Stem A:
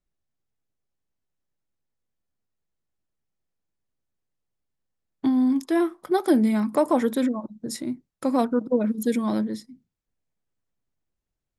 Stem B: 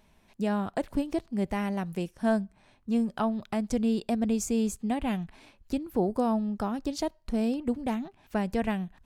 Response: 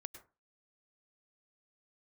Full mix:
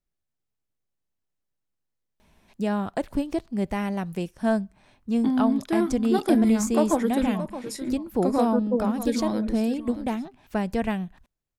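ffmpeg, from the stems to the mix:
-filter_complex "[0:a]volume=-2.5dB,asplit=2[link_01][link_02];[link_02]volume=-12dB[link_03];[1:a]adelay=2200,volume=2.5dB[link_04];[link_03]aecho=0:1:621:1[link_05];[link_01][link_04][link_05]amix=inputs=3:normalize=0"

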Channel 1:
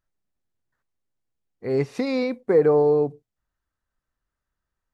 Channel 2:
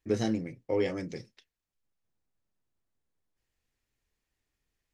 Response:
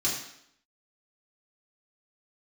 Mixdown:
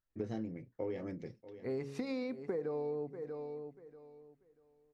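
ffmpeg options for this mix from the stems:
-filter_complex "[0:a]equalizer=frequency=240:width=1.5:gain=2.5,bandreject=frequency=69.33:width_type=h:width=4,bandreject=frequency=138.66:width_type=h:width=4,bandreject=frequency=207.99:width_type=h:width=4,bandreject=frequency=277.32:width_type=h:width=4,bandreject=frequency=346.65:width_type=h:width=4,bandreject=frequency=415.98:width_type=h:width=4,bandreject=frequency=485.31:width_type=h:width=4,bandreject=frequency=554.64:width_type=h:width=4,volume=-9.5dB,asplit=2[link_01][link_02];[link_02]volume=-16.5dB[link_03];[1:a]lowpass=frequency=1200:poles=1,adelay=100,volume=-5dB,asplit=2[link_04][link_05];[link_05]volume=-18.5dB[link_06];[link_03][link_06]amix=inputs=2:normalize=0,aecho=0:1:638|1276|1914|2552:1|0.22|0.0484|0.0106[link_07];[link_01][link_04][link_07]amix=inputs=3:normalize=0,acompressor=threshold=-34dB:ratio=12"

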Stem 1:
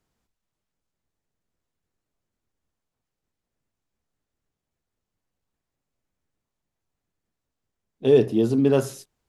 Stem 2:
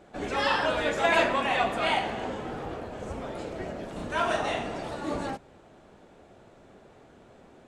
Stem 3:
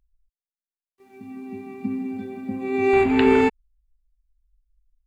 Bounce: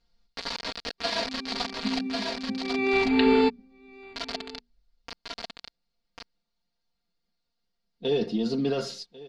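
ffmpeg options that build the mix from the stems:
ffmpeg -i stem1.wav -i stem2.wav -i stem3.wav -filter_complex "[0:a]aecho=1:1:5.7:0.6,alimiter=limit=-14.5dB:level=0:latency=1:release=13,volume=-5dB,asplit=2[link_01][link_02];[link_02]volume=-19.5dB[link_03];[1:a]lowpass=frequency=1000:poles=1,aeval=exprs='sgn(val(0))*max(abs(val(0))-0.00398,0)':channel_layout=same,acrusher=bits=3:mix=0:aa=0.000001,volume=-9.5dB,asplit=2[link_04][link_05];[link_05]volume=-3.5dB[link_06];[2:a]bandreject=frequency=60:width_type=h:width=6,bandreject=frequency=120:width_type=h:width=6,bandreject=frequency=180:width_type=h:width=6,bandreject=frequency=240:width_type=h:width=6,bandreject=frequency=300:width_type=h:width=6,bandreject=frequency=360:width_type=h:width=6,bandreject=frequency=420:width_type=h:width=6,volume=-7dB,asplit=2[link_07][link_08];[link_08]volume=-23.5dB[link_09];[link_03][link_06][link_09]amix=inputs=3:normalize=0,aecho=0:1:1095:1[link_10];[link_01][link_04][link_07][link_10]amix=inputs=4:normalize=0,lowpass=frequency=4500:width_type=q:width=5.2,aecho=1:1:4.3:0.79" out.wav

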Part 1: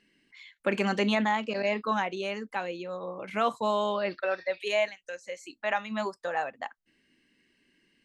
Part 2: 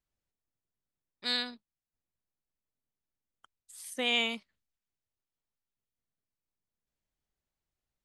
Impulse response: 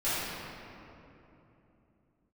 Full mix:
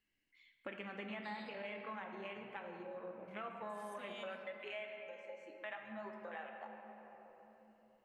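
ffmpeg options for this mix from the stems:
-filter_complex "[0:a]afwtdn=0.02,equalizer=frequency=2300:width=0.71:gain=6.5,acompressor=threshold=-30dB:ratio=2.5,volume=-8.5dB,asplit=3[link_01][link_02][link_03];[link_02]volume=-13dB[link_04];[1:a]alimiter=level_in=2dB:limit=-24dB:level=0:latency=1:release=154,volume=-2dB,volume=-3.5dB,asplit=2[link_05][link_06];[link_06]volume=-24dB[link_07];[link_03]apad=whole_len=354723[link_08];[link_05][link_08]sidechaincompress=threshold=-47dB:ratio=8:attack=16:release=176[link_09];[2:a]atrim=start_sample=2205[link_10];[link_04][link_07]amix=inputs=2:normalize=0[link_11];[link_11][link_10]afir=irnorm=-1:irlink=0[link_12];[link_01][link_09][link_12]amix=inputs=3:normalize=0,acompressor=threshold=-58dB:ratio=1.5"

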